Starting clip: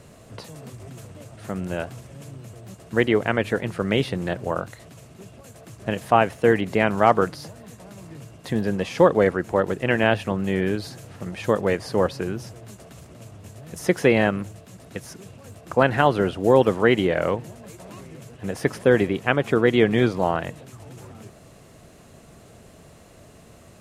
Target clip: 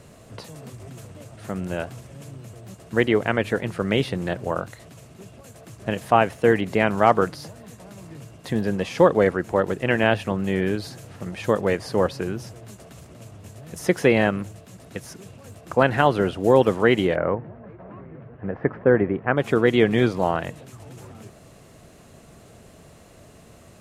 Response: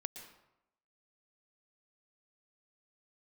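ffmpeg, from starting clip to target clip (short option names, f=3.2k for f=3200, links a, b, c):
-filter_complex "[0:a]asplit=3[a][b][c];[a]afade=t=out:st=17.15:d=0.02[d];[b]lowpass=f=1.8k:w=0.5412,lowpass=f=1.8k:w=1.3066,afade=t=in:st=17.15:d=0.02,afade=t=out:st=19.36:d=0.02[e];[c]afade=t=in:st=19.36:d=0.02[f];[d][e][f]amix=inputs=3:normalize=0"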